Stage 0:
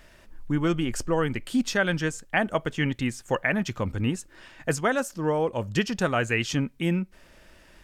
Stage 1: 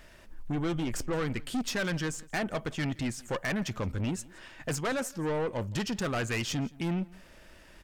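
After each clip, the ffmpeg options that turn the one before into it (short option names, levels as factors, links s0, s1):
-af "aeval=exprs='(tanh(22.4*val(0)+0.25)-tanh(0.25))/22.4':c=same,aecho=1:1:170:0.0708"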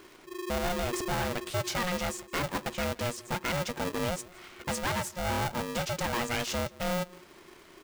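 -af "aeval=exprs='val(0)*sgn(sin(2*PI*360*n/s))':c=same"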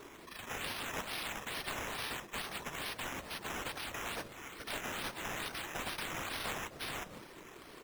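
-af "afftfilt=real='re*lt(hypot(re,im),0.0282)':imag='im*lt(hypot(re,im),0.0282)':win_size=1024:overlap=0.75,afftfilt=real='hypot(re,im)*cos(2*PI*random(0))':imag='hypot(re,im)*sin(2*PI*random(1))':win_size=512:overlap=0.75,acrusher=samples=8:mix=1:aa=0.000001:lfo=1:lforange=4.8:lforate=2.3,volume=2.24"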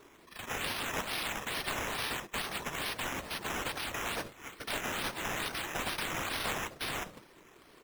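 -af "agate=range=0.316:threshold=0.00447:ratio=16:detection=peak,volume=1.68"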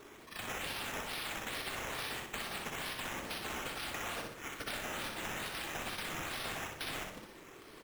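-filter_complex "[0:a]bandreject=f=1000:w=20,acompressor=threshold=0.00794:ratio=6,asplit=2[s0][s1];[s1]aecho=0:1:62|124|186|248|310|372:0.596|0.268|0.121|0.0543|0.0244|0.011[s2];[s0][s2]amix=inputs=2:normalize=0,volume=1.41"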